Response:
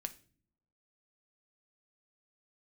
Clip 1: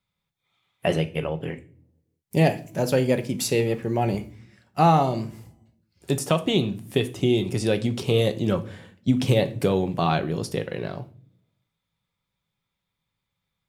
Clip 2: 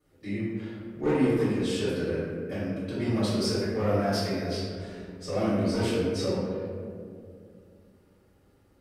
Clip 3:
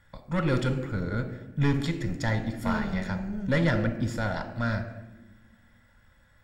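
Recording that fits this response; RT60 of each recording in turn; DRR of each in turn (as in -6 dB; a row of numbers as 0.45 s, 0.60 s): 1; no single decay rate, 2.3 s, 1.2 s; 8.0 dB, -13.0 dB, 7.0 dB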